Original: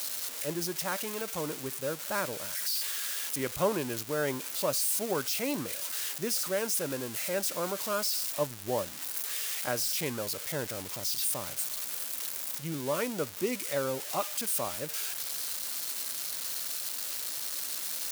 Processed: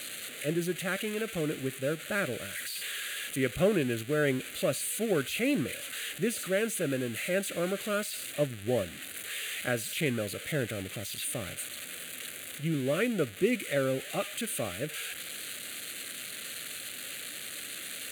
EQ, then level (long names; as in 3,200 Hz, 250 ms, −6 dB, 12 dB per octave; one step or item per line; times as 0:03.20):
high-frequency loss of the air 63 metres
high-shelf EQ 6,500 Hz +4 dB
phaser with its sweep stopped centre 2,300 Hz, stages 4
+6.5 dB